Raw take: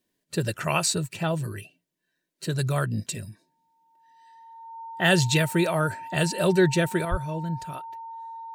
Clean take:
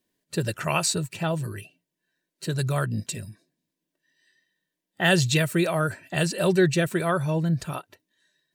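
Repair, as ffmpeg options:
ffmpeg -i in.wav -filter_complex "[0:a]bandreject=frequency=910:width=30,asplit=3[link_01][link_02][link_03];[link_01]afade=type=out:start_time=7.1:duration=0.02[link_04];[link_02]highpass=frequency=140:width=0.5412,highpass=frequency=140:width=1.3066,afade=type=in:start_time=7.1:duration=0.02,afade=type=out:start_time=7.22:duration=0.02[link_05];[link_03]afade=type=in:start_time=7.22:duration=0.02[link_06];[link_04][link_05][link_06]amix=inputs=3:normalize=0,asetnsamples=nb_out_samples=441:pad=0,asendcmd='7.05 volume volume 6.5dB',volume=0dB" out.wav

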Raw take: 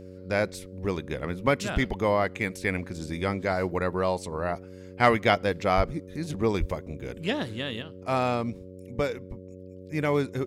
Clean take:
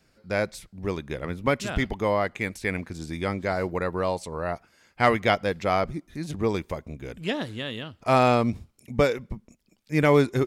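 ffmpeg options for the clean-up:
ffmpeg -i in.wav -filter_complex "[0:a]bandreject=frequency=92.9:width_type=h:width=4,bandreject=frequency=185.8:width_type=h:width=4,bandreject=frequency=278.7:width_type=h:width=4,bandreject=frequency=371.6:width_type=h:width=4,bandreject=frequency=464.5:width_type=h:width=4,bandreject=frequency=557.4:width_type=h:width=4,asplit=3[link_01][link_02][link_03];[link_01]afade=type=out:start_time=5.76:duration=0.02[link_04];[link_02]highpass=frequency=140:width=0.5412,highpass=frequency=140:width=1.3066,afade=type=in:start_time=5.76:duration=0.02,afade=type=out:start_time=5.88:duration=0.02[link_05];[link_03]afade=type=in:start_time=5.88:duration=0.02[link_06];[link_04][link_05][link_06]amix=inputs=3:normalize=0,asplit=3[link_07][link_08][link_09];[link_07]afade=type=out:start_time=6.59:duration=0.02[link_10];[link_08]highpass=frequency=140:width=0.5412,highpass=frequency=140:width=1.3066,afade=type=in:start_time=6.59:duration=0.02,afade=type=out:start_time=6.71:duration=0.02[link_11];[link_09]afade=type=in:start_time=6.71:duration=0.02[link_12];[link_10][link_11][link_12]amix=inputs=3:normalize=0,asetnsamples=nb_out_samples=441:pad=0,asendcmd='7.82 volume volume 6.5dB',volume=0dB" out.wav

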